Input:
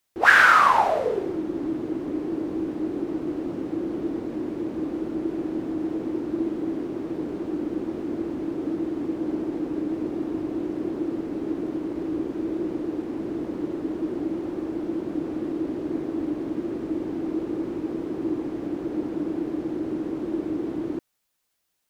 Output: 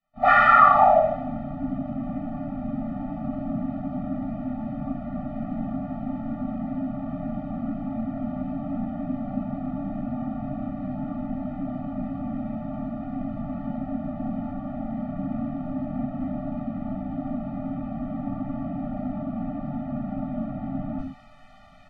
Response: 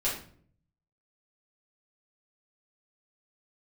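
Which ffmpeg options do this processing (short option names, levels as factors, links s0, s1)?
-filter_complex "[0:a]lowpass=1400,areverse,acompressor=mode=upward:threshold=0.0224:ratio=2.5,areverse,asplit=3[s0][s1][s2];[s1]asetrate=29433,aresample=44100,atempo=1.49831,volume=0.126[s3];[s2]asetrate=58866,aresample=44100,atempo=0.749154,volume=0.178[s4];[s0][s3][s4]amix=inputs=3:normalize=0[s5];[1:a]atrim=start_sample=2205,atrim=end_sample=6615[s6];[s5][s6]afir=irnorm=-1:irlink=0,afftfilt=real='re*eq(mod(floor(b*sr/1024/290),2),0)':imag='im*eq(mod(floor(b*sr/1024/290),2),0)':win_size=1024:overlap=0.75"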